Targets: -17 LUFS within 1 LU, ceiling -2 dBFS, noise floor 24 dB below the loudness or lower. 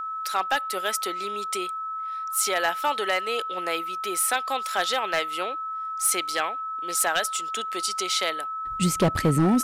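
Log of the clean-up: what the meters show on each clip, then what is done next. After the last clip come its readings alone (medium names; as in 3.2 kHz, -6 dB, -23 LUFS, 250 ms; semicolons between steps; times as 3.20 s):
clipped samples 0.5%; clipping level -14.5 dBFS; steady tone 1.3 kHz; tone level -29 dBFS; loudness -25.5 LUFS; peak level -14.5 dBFS; loudness target -17.0 LUFS
-> clip repair -14.5 dBFS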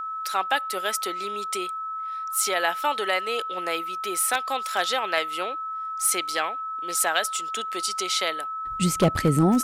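clipped samples 0.0%; steady tone 1.3 kHz; tone level -29 dBFS
-> band-stop 1.3 kHz, Q 30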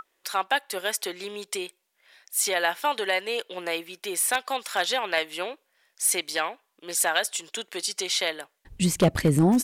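steady tone not found; loudness -26.5 LUFS; peak level -6.5 dBFS; loudness target -17.0 LUFS
-> trim +9.5 dB; peak limiter -2 dBFS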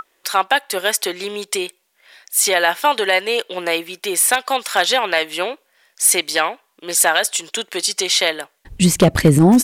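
loudness -17.5 LUFS; peak level -2.0 dBFS; noise floor -64 dBFS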